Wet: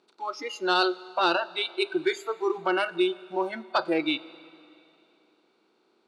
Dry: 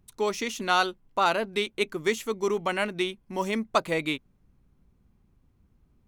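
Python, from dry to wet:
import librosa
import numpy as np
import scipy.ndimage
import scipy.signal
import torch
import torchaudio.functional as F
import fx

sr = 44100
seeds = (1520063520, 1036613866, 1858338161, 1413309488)

y = fx.bin_compress(x, sr, power=0.4)
y = fx.noise_reduce_blind(y, sr, reduce_db=29)
y = 10.0 ** (-11.0 / 20.0) * np.tanh(y / 10.0 ** (-11.0 / 20.0))
y = fx.cabinet(y, sr, low_hz=310.0, low_slope=12, high_hz=8900.0, hz=(340.0, 660.0, 1100.0, 1900.0, 4400.0, 6500.0), db=(8, -4, -4, -7, 8, -6))
y = fx.rev_schroeder(y, sr, rt60_s=2.8, comb_ms=38, drr_db=18.5)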